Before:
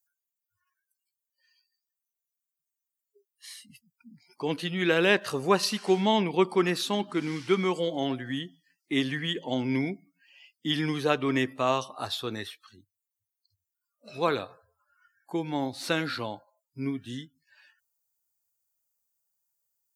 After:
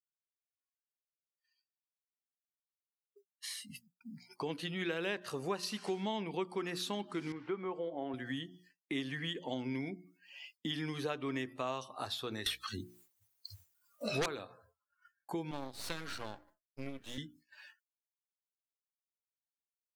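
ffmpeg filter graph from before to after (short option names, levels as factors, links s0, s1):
-filter_complex "[0:a]asettb=1/sr,asplit=3[s0][s1][s2];[s0]atrim=end=7.324[s3];[s1]atrim=start=7.32:end=8.14,asetpts=PTS-STARTPTS,afade=t=in:d=0.004:c=qsin,afade=t=out:st=0.816:d=0.004:c=qsin,lowpass=1300,equalizer=f=120:t=o:w=1.8:g=-11[s4];[s2]atrim=start=8.136[s5];[s3][s4]acrossfade=d=0.004:c1=hsin:c2=qsin[s6];[s6][s5]acrossfade=d=0.004:c1=qsin:c2=hsin,asettb=1/sr,asplit=3[s7][s8][s9];[s7]atrim=end=12.464[s10];[s8]atrim=start=12.46:end=14.26,asetpts=PTS-STARTPTS,afade=t=in:d=0.004:c=qsin,afade=t=out:st=1.796:d=0.004:c=qsin,aeval=exprs='val(0)+0.00112*(sin(2*PI*60*n/s)+sin(2*PI*2*60*n/s)/2+sin(2*PI*3*60*n/s)/3+sin(2*PI*4*60*n/s)/4+sin(2*PI*5*60*n/s)/5)':c=same,aeval=exprs='0.237*sin(PI/2*6.31*val(0)/0.237)':c=same[s11];[s9]atrim=start=14.256[s12];[s10][s11]acrossfade=d=0.004:c1=hsin:c2=qsin[s13];[s13][s12]acrossfade=d=0.004:c1=qsin:c2=hsin,asettb=1/sr,asplit=3[s14][s15][s16];[s14]atrim=end=15.514[s17];[s15]atrim=start=15.51:end=17.18,asetpts=PTS-STARTPTS,afade=t=in:d=0.004:c=qsin,afade=t=out:st=1.666:d=0.004:c=qsin,highpass=f=410:p=1,aeval=exprs='max(val(0),0)':c=same[s18];[s16]atrim=start=17.176[s19];[s17][s18]acrossfade=d=0.004:c1=hsin:c2=qsin[s20];[s20][s19]acrossfade=d=0.004:c1=qsin:c2=hsin,bandreject=f=60:t=h:w=6,bandreject=f=120:t=h:w=6,bandreject=f=180:t=h:w=6,bandreject=f=240:t=h:w=6,bandreject=f=300:t=h:w=6,bandreject=f=360:t=h:w=6,agate=range=0.0224:threshold=0.00141:ratio=3:detection=peak,acompressor=threshold=0.00631:ratio=3,volume=1.58"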